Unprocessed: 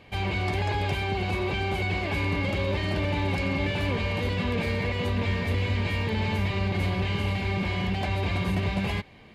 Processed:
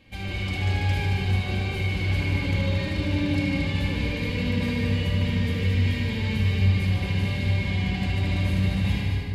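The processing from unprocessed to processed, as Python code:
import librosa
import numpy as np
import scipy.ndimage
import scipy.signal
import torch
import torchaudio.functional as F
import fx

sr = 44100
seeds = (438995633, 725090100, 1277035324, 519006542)

y = fx.peak_eq(x, sr, hz=840.0, db=-10.5, octaves=2.4)
y = fx.echo_heads(y, sr, ms=75, heads='all three', feedback_pct=49, wet_db=-8.0)
y = fx.room_shoebox(y, sr, seeds[0], volume_m3=2200.0, walls='mixed', distance_m=2.2)
y = y * 10.0 ** (-2.0 / 20.0)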